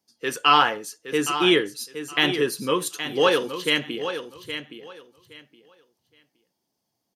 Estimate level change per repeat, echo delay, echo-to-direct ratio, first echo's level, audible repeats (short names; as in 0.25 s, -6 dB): -14.0 dB, 0.818 s, -10.0 dB, -10.0 dB, 2